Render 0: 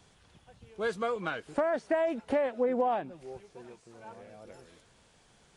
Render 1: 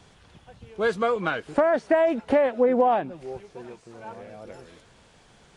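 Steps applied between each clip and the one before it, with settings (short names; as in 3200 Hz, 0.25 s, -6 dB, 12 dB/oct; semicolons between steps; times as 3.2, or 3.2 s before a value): high shelf 6700 Hz -8 dB; gain +8 dB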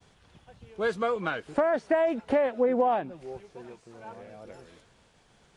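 expander -52 dBFS; gain -4 dB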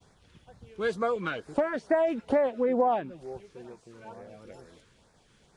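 LFO notch sine 2.2 Hz 670–3100 Hz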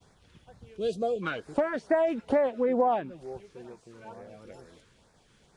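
spectral gain 0.77–1.22, 770–2400 Hz -21 dB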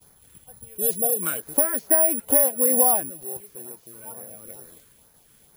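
careless resampling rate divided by 4×, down none, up zero stuff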